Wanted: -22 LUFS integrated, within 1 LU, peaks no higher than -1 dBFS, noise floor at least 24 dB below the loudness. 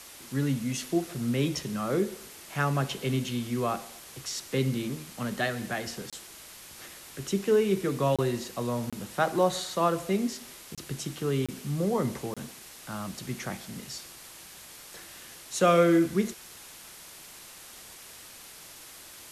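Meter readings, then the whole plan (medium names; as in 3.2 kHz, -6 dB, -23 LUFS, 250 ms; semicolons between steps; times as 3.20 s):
dropouts 6; longest dropout 26 ms; noise floor -48 dBFS; noise floor target -54 dBFS; loudness -29.5 LUFS; peak level -10.5 dBFS; loudness target -22.0 LUFS
-> interpolate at 6.10/8.16/8.90/10.75/11.46/12.34 s, 26 ms; noise print and reduce 6 dB; trim +7.5 dB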